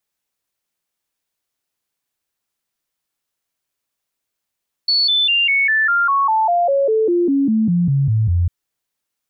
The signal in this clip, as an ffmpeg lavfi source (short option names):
-f lavfi -i "aevalsrc='0.237*clip(min(mod(t,0.2),0.2-mod(t,0.2))/0.005,0,1)*sin(2*PI*4430*pow(2,-floor(t/0.2)/3)*mod(t,0.2))':d=3.6:s=44100"